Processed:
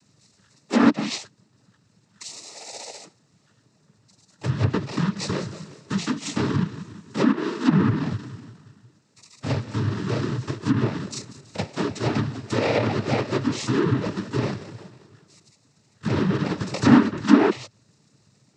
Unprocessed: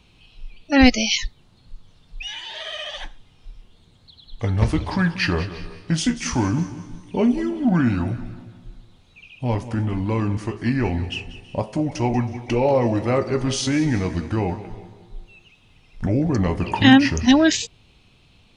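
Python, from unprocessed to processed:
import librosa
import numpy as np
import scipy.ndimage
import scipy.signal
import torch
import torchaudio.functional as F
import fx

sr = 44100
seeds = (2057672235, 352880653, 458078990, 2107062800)

y = fx.bit_reversed(x, sr, seeds[0], block=32)
y = fx.noise_vocoder(y, sr, seeds[1], bands=12)
y = fx.env_lowpass_down(y, sr, base_hz=2200.0, full_db=-14.5)
y = F.gain(torch.from_numpy(y), -1.0).numpy()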